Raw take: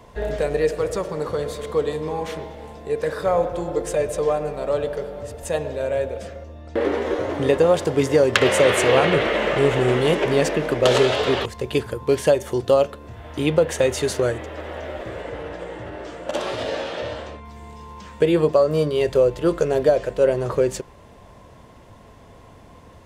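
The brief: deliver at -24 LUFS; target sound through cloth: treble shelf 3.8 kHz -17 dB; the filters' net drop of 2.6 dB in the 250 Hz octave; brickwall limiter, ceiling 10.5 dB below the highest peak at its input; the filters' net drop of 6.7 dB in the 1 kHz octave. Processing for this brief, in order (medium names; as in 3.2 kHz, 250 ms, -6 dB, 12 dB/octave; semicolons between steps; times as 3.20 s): peaking EQ 250 Hz -3 dB; peaking EQ 1 kHz -8 dB; peak limiter -12.5 dBFS; treble shelf 3.8 kHz -17 dB; trim +1.5 dB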